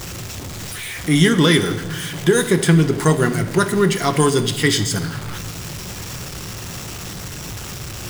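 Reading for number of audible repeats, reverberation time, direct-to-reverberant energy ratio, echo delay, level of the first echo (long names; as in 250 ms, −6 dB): no echo audible, 1.2 s, 9.0 dB, no echo audible, no echo audible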